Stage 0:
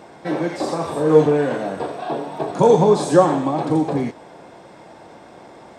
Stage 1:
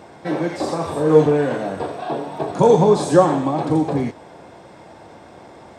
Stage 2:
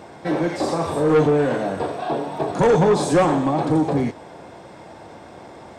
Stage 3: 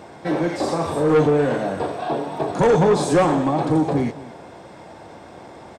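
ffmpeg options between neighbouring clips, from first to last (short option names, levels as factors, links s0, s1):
-af "equalizer=f=84:t=o:w=0.84:g=8"
-af "asoftclip=type=tanh:threshold=0.237,volume=1.19"
-filter_complex "[0:a]asplit=2[s0][s1];[s1]adelay=221.6,volume=0.126,highshelf=f=4000:g=-4.99[s2];[s0][s2]amix=inputs=2:normalize=0"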